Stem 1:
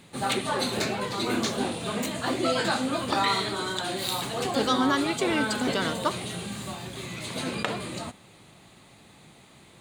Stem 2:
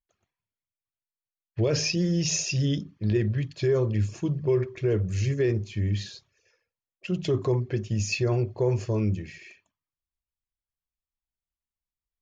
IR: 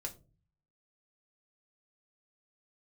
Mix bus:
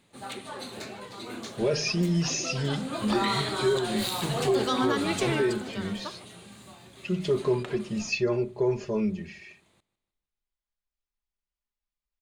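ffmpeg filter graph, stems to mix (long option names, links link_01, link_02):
-filter_complex "[0:a]afade=type=in:start_time=2.75:duration=0.49:silence=0.266073,afade=type=out:start_time=5.17:duration=0.47:silence=0.237137,asplit=2[link_01][link_02];[link_02]volume=-19dB[link_03];[1:a]lowpass=5500,aecho=1:1:4.9:0.9,volume=-4dB,asplit=2[link_04][link_05];[link_05]volume=-8.5dB[link_06];[2:a]atrim=start_sample=2205[link_07];[link_06][link_07]afir=irnorm=-1:irlink=0[link_08];[link_03]aecho=0:1:153|306|459|612|765|918|1071:1|0.48|0.23|0.111|0.0531|0.0255|0.0122[link_09];[link_01][link_04][link_08][link_09]amix=inputs=4:normalize=0,equalizer=frequency=150:width_type=o:width=0.34:gain=-5.5,alimiter=limit=-15.5dB:level=0:latency=1:release=185"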